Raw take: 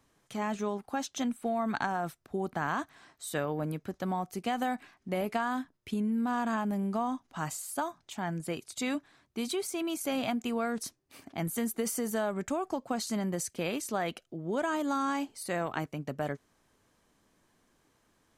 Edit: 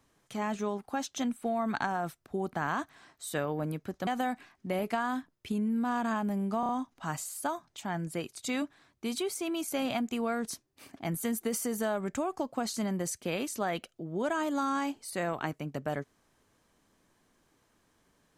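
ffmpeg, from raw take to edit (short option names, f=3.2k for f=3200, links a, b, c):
-filter_complex "[0:a]asplit=5[a][b][c][d][e];[a]atrim=end=4.072[f];[b]atrim=start=4.488:end=7.052[g];[c]atrim=start=7.018:end=7.052[h];[d]atrim=start=7.018:end=7.052[i];[e]atrim=start=7.018[j];[f][g]acrossfade=d=0.004:c1=hsin:c2=hsin[k];[k][h]acrossfade=d=0.004:c1=hsin:c2=hsin[l];[l][i]acrossfade=d=0.004:c1=hsin:c2=hsin[m];[m][j]acrossfade=d=0.004:c1=hsin:c2=hsin"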